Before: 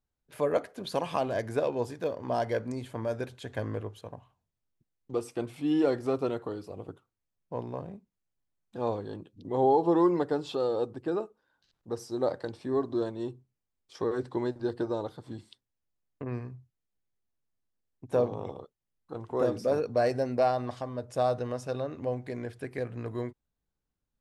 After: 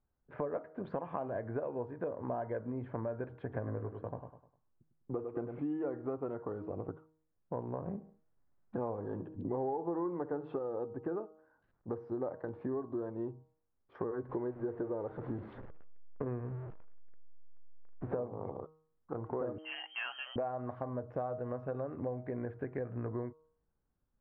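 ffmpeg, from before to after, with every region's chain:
-filter_complex "[0:a]asettb=1/sr,asplit=3[a][b][c];[a]atrim=end=3.424[d];[b]atrim=start=3.42:end=5.59,asetpts=PTS-STARTPTS,afade=t=in:d=0.004:c=qsin,afade=t=out:st=2.166:d=0.004:c=qsin,equalizer=f=10k:t=o:w=2.5:g=-9,aecho=1:1:101|202|303|404:0.355|0.131|0.0486|0.018,atrim=end_sample=95697[e];[c]atrim=start=5.586[f];[d][e]acrossfade=d=0.004:c1=hsin:c2=qsin[g];[g][f]acrossfade=d=0.004:c1=qsin:c2=hsin,asettb=1/sr,asplit=3[h][i][j];[h]atrim=end=7.864[k];[i]atrim=start=7.86:end=10.59,asetpts=PTS-STARTPTS,afade=t=in:d=0.004:c=qsin,afade=t=out:st=2.726:d=0.004:c=qsin,aecho=1:1:69|138|207:0.112|0.046|0.0189,atrim=end_sample=120393,acontrast=31[l];[j]atrim=start=10.586[m];[k][l]acrossfade=d=0.004:c1=hsin:c2=qsin[n];[n][m]acrossfade=d=0.004:c1=qsin:c2=hsin,asettb=1/sr,asplit=3[o][p][q];[o]atrim=end=14.294[r];[p]atrim=start=14.29:end=18.15,asetpts=PTS-STARTPTS,afade=t=in:d=0.004:c=qsin,afade=t=out:st=3.856:d=0.004:c=qsin,aeval=exprs='val(0)+0.5*0.0075*sgn(val(0))':c=same,equalizer=f=460:w=2.1:g=5.5[s];[q]atrim=start=18.146[t];[r][s]acrossfade=d=0.004:c1=hsin:c2=qsin[u];[u][t]acrossfade=d=0.004:c1=qsin:c2=hsin,asettb=1/sr,asplit=3[v][w][x];[v]atrim=end=19.584[y];[w]atrim=start=19.58:end=20.36,asetpts=PTS-STARTPTS,afade=t=in:d=0.004:c=qsin,afade=t=out:st=0.776:d=0.004:c=qsin,equalizer=f=120:t=o:w=0.58:g=6.5,lowpass=f=2.8k:t=q:w=0.5098,lowpass=f=2.8k:t=q:w=0.6013,lowpass=f=2.8k:t=q:w=0.9,lowpass=f=2.8k:t=q:w=2.563,afreqshift=-3300[z];[x]atrim=start=20.356[aa];[y][z]acrossfade=d=0.004:c1=hsin:c2=qsin[ab];[ab][aa]acrossfade=d=0.004:c1=qsin:c2=hsin,lowpass=f=1.6k:w=0.5412,lowpass=f=1.6k:w=1.3066,bandreject=f=157.1:t=h:w=4,bandreject=f=314.2:t=h:w=4,bandreject=f=471.3:t=h:w=4,bandreject=f=628.4:t=h:w=4,bandreject=f=785.5:t=h:w=4,bandreject=f=942.6:t=h:w=4,bandreject=f=1.0997k:t=h:w=4,bandreject=f=1.2568k:t=h:w=4,bandreject=f=1.4139k:t=h:w=4,acompressor=threshold=-39dB:ratio=6,volume=4dB"

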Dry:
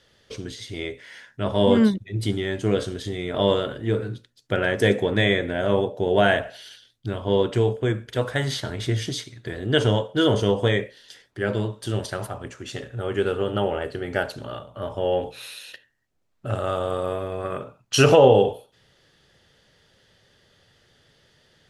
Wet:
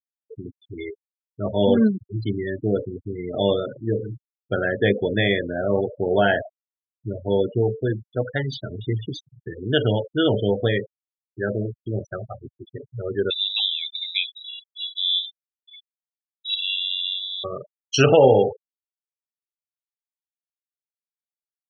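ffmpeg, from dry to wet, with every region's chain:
-filter_complex "[0:a]asettb=1/sr,asplit=3[a][b][c];[a]atrim=end=13.304[d];[b]atrim=start=13.3:end=17.44,asetpts=PTS-STARTPTS,afade=t=in:d=0.004:c=qsin,afade=t=out:st=4.136:d=0.004:c=qsin,lowpass=f=3.4k:t=q:w=0.5098,lowpass=f=3.4k:t=q:w=0.6013,lowpass=f=3.4k:t=q:w=0.9,lowpass=f=3.4k:t=q:w=2.563,afreqshift=-4000,aecho=1:1:621:0.112,atrim=end_sample=182574[e];[c]atrim=start=17.436[f];[d][e]acrossfade=d=0.004:c1=hsin:c2=qsin[g];[g][f]acrossfade=d=0.004:c1=qsin:c2=hsin,bandreject=f=1k:w=8.6,afftfilt=real='re*gte(hypot(re,im),0.0891)':imag='im*gte(hypot(re,im),0.0891)':win_size=1024:overlap=0.75,highpass=80"

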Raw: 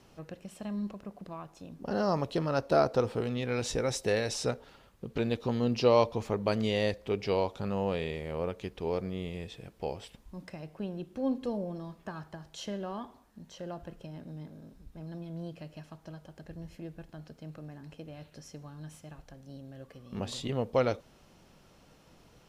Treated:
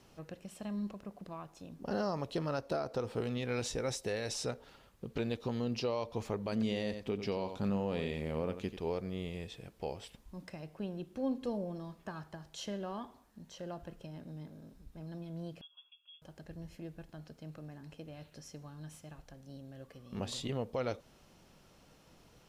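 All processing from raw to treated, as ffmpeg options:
-filter_complex "[0:a]asettb=1/sr,asplit=3[a][b][c];[a]atrim=end=6.524[d];[b]atrim=start=6.52:end=8.77,asetpts=PTS-STARTPTS,afade=t=in:d=0.004:c=qsin,afade=t=out:st=2.246:d=0.004:c=qsin,equalizer=f=230:w=1.8:g=7.5,aecho=1:1:90:0.282,atrim=end_sample=99225[e];[c]atrim=start=8.766[f];[d][e]acrossfade=d=0.004:c1=hsin:c2=qsin[g];[g][f]acrossfade=d=0.004:c1=qsin:c2=hsin,asettb=1/sr,asplit=3[h][i][j];[h]atrim=end=15.614[k];[i]atrim=start=15.61:end=16.22,asetpts=PTS-STARTPTS,afade=t=in:d=0.004:c=qsin,afade=t=out:st=0.606:d=0.004:c=qsin,asplit=3[l][m][n];[l]bandpass=f=300:t=q:w=8,volume=0dB[o];[m]bandpass=f=870:t=q:w=8,volume=-6dB[p];[n]bandpass=f=2.24k:t=q:w=8,volume=-9dB[q];[o][p][q]amix=inputs=3:normalize=0,lowpass=f=3.1k:t=q:w=0.5098,lowpass=f=3.1k:t=q:w=0.6013,lowpass=f=3.1k:t=q:w=0.9,lowpass=f=3.1k:t=q:w=2.563,afreqshift=-3600[r];[j]atrim=start=16.216[s];[k][r]acrossfade=d=0.004:c1=hsin:c2=qsin[t];[t][s]acrossfade=d=0.004:c1=qsin:c2=hsin,aemphasis=mode=production:type=cd,alimiter=limit=-22.5dB:level=0:latency=1:release=195,highshelf=f=6k:g=-7.5,volume=-2.5dB"

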